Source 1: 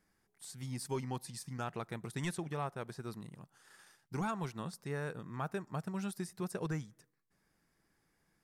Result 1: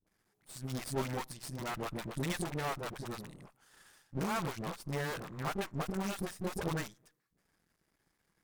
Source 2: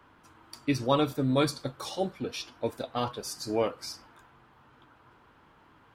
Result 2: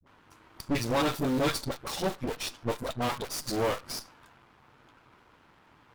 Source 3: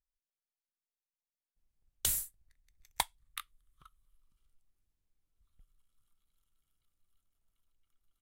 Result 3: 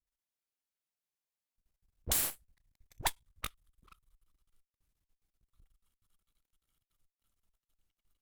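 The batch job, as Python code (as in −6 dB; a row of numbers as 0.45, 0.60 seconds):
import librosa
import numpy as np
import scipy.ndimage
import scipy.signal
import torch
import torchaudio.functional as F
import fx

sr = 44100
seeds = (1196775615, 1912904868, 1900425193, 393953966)

p1 = fx.quant_dither(x, sr, seeds[0], bits=6, dither='none')
p2 = x + F.gain(torch.from_numpy(p1), -4.0).numpy()
p3 = fx.dispersion(p2, sr, late='highs', ms=68.0, hz=350.0)
p4 = np.maximum(p3, 0.0)
p5 = fx.tube_stage(p4, sr, drive_db=15.0, bias=0.7)
y = F.gain(torch.from_numpy(p5), 8.0).numpy()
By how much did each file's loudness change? +2.5, −0.5, +1.0 LU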